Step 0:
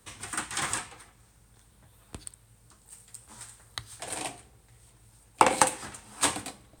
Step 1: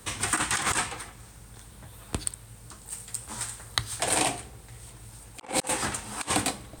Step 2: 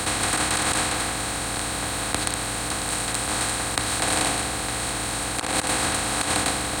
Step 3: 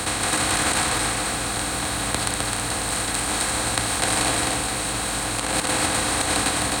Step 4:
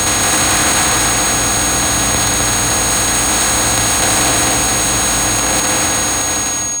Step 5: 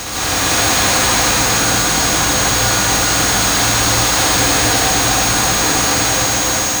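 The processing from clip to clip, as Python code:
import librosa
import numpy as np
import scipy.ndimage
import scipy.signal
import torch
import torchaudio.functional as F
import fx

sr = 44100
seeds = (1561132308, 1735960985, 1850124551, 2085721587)

y1 = fx.over_compress(x, sr, threshold_db=-34.0, ratio=-0.5)
y1 = y1 * 10.0 ** (6.5 / 20.0)
y2 = fx.bin_compress(y1, sr, power=0.2)
y2 = y2 * 10.0 ** (-4.0 / 20.0)
y3 = y2 + 10.0 ** (-3.0 / 20.0) * np.pad(y2, (int(259 * sr / 1000.0), 0))[:len(y2)]
y4 = fx.fade_out_tail(y3, sr, length_s=1.54)
y4 = fx.power_curve(y4, sr, exponent=0.5)
y4 = y4 + 10.0 ** (-15.0 / 20.0) * np.sin(2.0 * np.pi * 6600.0 * np.arange(len(y4)) / sr)
y4 = y4 * 10.0 ** (-1.5 / 20.0)
y5 = fx.sample_hold(y4, sr, seeds[0], rate_hz=13000.0, jitter_pct=20)
y5 = fx.rev_plate(y5, sr, seeds[1], rt60_s=3.9, hf_ratio=0.75, predelay_ms=105, drr_db=-10.0)
y5 = y5 * 10.0 ** (-10.5 / 20.0)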